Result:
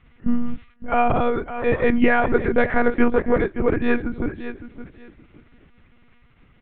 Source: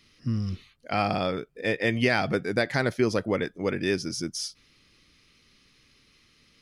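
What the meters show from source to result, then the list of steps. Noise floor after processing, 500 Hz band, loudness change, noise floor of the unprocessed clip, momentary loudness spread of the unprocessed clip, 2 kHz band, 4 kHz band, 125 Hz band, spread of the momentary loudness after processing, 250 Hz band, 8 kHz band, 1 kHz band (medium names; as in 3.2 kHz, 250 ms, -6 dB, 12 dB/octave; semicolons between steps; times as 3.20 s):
-55 dBFS, +7.0 dB, +6.0 dB, -62 dBFS, 8 LU, +4.5 dB, -8.5 dB, 0.0 dB, 15 LU, +7.5 dB, under -40 dB, +8.5 dB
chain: Chebyshev low-pass 1.5 kHz, order 2; bass shelf 87 Hz +10 dB; feedback delay 566 ms, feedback 21%, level -12 dB; monotone LPC vocoder at 8 kHz 240 Hz; trim +8 dB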